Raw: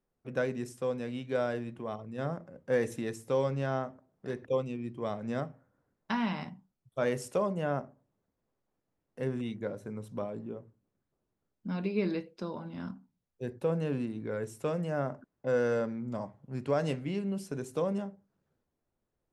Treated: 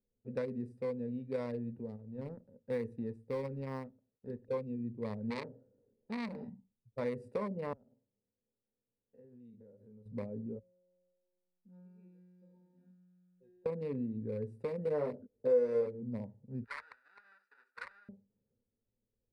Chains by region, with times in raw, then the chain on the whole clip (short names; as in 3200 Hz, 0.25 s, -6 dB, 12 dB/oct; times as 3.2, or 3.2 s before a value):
1.85–4.47 G.711 law mismatch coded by A + dynamic EQ 650 Hz, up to -6 dB, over -47 dBFS, Q 2.7
5.3–6.45 bell 420 Hz +13 dB 1.2 oct + core saturation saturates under 2900 Hz
7.73–10.06 stepped spectrum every 50 ms + low shelf 220 Hz -8 dB + compressor 4:1, threshold -55 dBFS
10.59–13.66 low shelf 160 Hz -11 dB + resonator 180 Hz, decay 1.7 s, mix 100% + three-band squash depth 70%
14.85–16.03 bell 450 Hz +13.5 dB 0.76 oct + doubler 20 ms -2 dB + mismatched tape noise reduction decoder only
16.64–18.09 half-waves squared off + ladder band-pass 1500 Hz, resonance 85% + tilt +3.5 dB/oct
whole clip: Wiener smoothing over 41 samples; ripple EQ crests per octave 0.93, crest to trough 11 dB; compressor 2.5:1, threshold -30 dBFS; gain -3.5 dB